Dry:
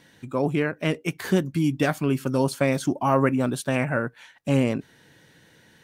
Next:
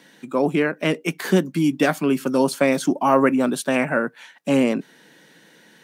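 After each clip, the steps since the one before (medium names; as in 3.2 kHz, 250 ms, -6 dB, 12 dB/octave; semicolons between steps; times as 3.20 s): steep high-pass 170 Hz 36 dB/octave; trim +4.5 dB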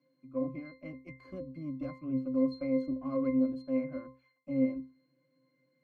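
Chebyshev shaper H 8 -24 dB, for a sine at -3 dBFS; pitch-class resonator C, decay 0.32 s; trim -4.5 dB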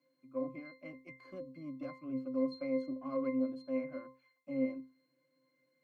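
high-pass 440 Hz 6 dB/octave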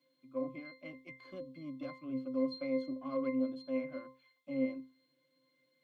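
peaking EQ 3.4 kHz +13.5 dB 0.51 oct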